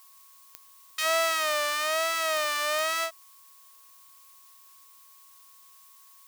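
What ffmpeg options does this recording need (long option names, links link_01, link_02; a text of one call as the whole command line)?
ffmpeg -i in.wav -af "adeclick=threshold=4,bandreject=frequency=1100:width=30,afftdn=noise_reduction=22:noise_floor=-55" out.wav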